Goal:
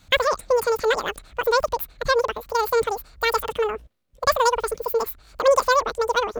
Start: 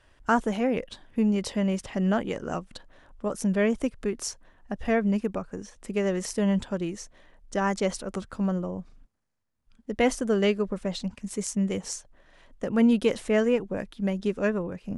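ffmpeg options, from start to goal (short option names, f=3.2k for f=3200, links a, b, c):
-af "asetrate=103194,aresample=44100,volume=5dB"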